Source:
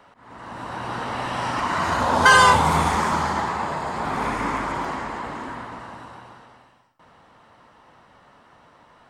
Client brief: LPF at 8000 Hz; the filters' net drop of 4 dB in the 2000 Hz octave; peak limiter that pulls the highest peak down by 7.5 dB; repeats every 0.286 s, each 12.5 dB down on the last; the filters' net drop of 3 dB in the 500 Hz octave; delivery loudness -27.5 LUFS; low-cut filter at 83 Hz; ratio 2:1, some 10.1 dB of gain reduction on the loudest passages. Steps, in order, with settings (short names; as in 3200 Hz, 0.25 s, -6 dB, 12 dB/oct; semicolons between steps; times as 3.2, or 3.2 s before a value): HPF 83 Hz; LPF 8000 Hz; bell 500 Hz -3.5 dB; bell 2000 Hz -5.5 dB; compressor 2:1, threshold -31 dBFS; limiter -22.5 dBFS; feedback echo 0.286 s, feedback 24%, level -12.5 dB; gain +5 dB